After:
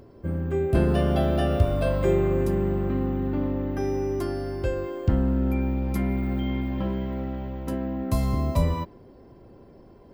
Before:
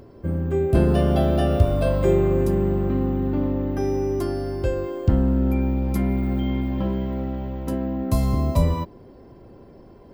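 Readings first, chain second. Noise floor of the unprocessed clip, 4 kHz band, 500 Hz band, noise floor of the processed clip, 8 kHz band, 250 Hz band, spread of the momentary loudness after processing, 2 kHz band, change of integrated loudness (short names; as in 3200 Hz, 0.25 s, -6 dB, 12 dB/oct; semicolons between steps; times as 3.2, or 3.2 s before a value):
-47 dBFS, -1.5 dB, -3.0 dB, -50 dBFS, n/a, -3.5 dB, 8 LU, 0.0 dB, -3.5 dB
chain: dynamic EQ 1900 Hz, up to +4 dB, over -45 dBFS, Q 0.85; gain -3.5 dB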